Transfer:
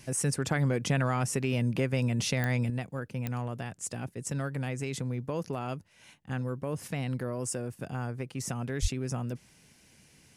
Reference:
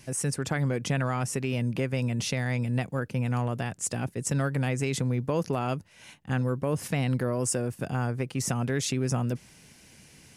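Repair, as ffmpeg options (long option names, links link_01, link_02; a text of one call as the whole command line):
ffmpeg -i in.wav -filter_complex "[0:a]adeclick=threshold=4,asplit=3[link_01][link_02][link_03];[link_01]afade=type=out:start_time=8.81:duration=0.02[link_04];[link_02]highpass=frequency=140:width=0.5412,highpass=frequency=140:width=1.3066,afade=type=in:start_time=8.81:duration=0.02,afade=type=out:start_time=8.93:duration=0.02[link_05];[link_03]afade=type=in:start_time=8.93:duration=0.02[link_06];[link_04][link_05][link_06]amix=inputs=3:normalize=0,asetnsamples=nb_out_samples=441:pad=0,asendcmd='2.7 volume volume 6dB',volume=0dB" out.wav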